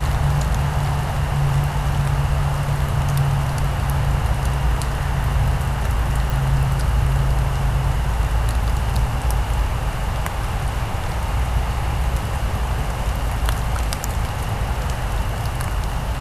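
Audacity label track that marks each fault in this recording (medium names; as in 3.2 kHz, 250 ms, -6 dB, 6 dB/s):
6.300000	6.300000	pop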